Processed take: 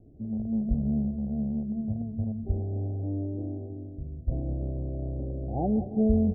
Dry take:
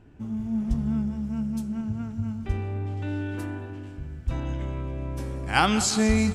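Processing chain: rattle on loud lows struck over -28 dBFS, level -14 dBFS; steep low-pass 710 Hz 72 dB/octave; trim -1 dB

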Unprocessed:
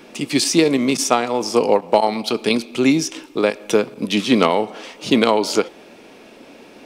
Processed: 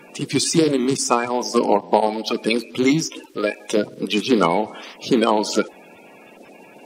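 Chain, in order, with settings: coarse spectral quantiser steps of 30 dB; 3.25–3.77 s: peaking EQ 180 Hz -9.5 dB 1.5 oct; trim -1 dB

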